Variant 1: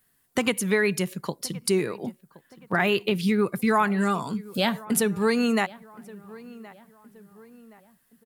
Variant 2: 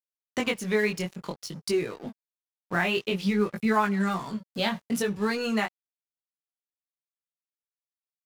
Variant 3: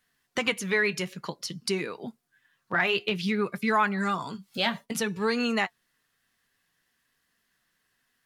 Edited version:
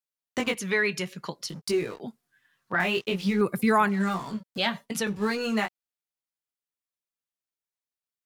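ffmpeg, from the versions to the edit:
-filter_complex "[2:a]asplit=3[a][b][c];[1:a]asplit=5[d][e][f][g][h];[d]atrim=end=0.552[i];[a]atrim=start=0.548:end=1.492[j];[e]atrim=start=1.488:end=2.002[k];[b]atrim=start=1.998:end=2.802[l];[f]atrim=start=2.798:end=3.412[m];[0:a]atrim=start=3.408:end=3.892[n];[g]atrim=start=3.888:end=4.582[o];[c]atrim=start=4.578:end=5.072[p];[h]atrim=start=5.068[q];[i][j]acrossfade=d=0.004:c1=hsin:c2=hsin[r];[r][k]acrossfade=d=0.004:c1=hsin:c2=hsin[s];[s][l]acrossfade=d=0.004:c1=hsin:c2=hsin[t];[t][m]acrossfade=d=0.004:c1=hsin:c2=hsin[u];[u][n]acrossfade=d=0.004:c1=hsin:c2=hsin[v];[v][o]acrossfade=d=0.004:c1=hsin:c2=hsin[w];[w][p]acrossfade=d=0.004:c1=hsin:c2=hsin[x];[x][q]acrossfade=d=0.004:c1=hsin:c2=hsin"

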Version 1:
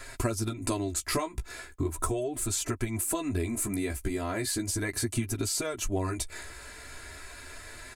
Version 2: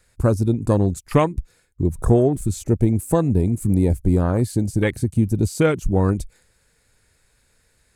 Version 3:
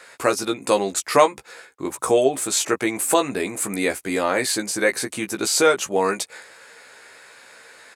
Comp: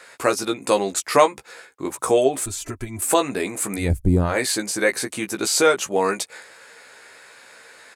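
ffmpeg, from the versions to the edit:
-filter_complex "[2:a]asplit=3[a][b][c];[a]atrim=end=2.462[d];[0:a]atrim=start=2.458:end=3.022[e];[b]atrim=start=3.018:end=3.92[f];[1:a]atrim=start=3.76:end=4.37[g];[c]atrim=start=4.21[h];[d][e]acrossfade=d=0.004:c1=hsin:c2=hsin[i];[i][f]acrossfade=d=0.004:c1=hsin:c2=hsin[j];[j][g]acrossfade=d=0.16:c1=tri:c2=tri[k];[k][h]acrossfade=d=0.16:c1=tri:c2=tri"

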